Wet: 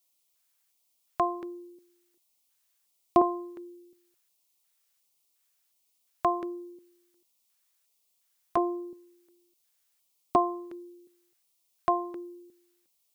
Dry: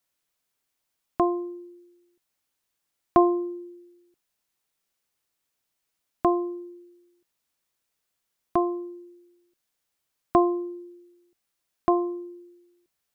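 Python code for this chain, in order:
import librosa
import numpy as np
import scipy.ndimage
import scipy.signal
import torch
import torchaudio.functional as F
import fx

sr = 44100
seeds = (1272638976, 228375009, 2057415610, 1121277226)

y = fx.filter_lfo_notch(x, sr, shape='square', hz=1.4, low_hz=280.0, high_hz=1600.0, q=1.1)
y = fx.tilt_eq(y, sr, slope=2.0)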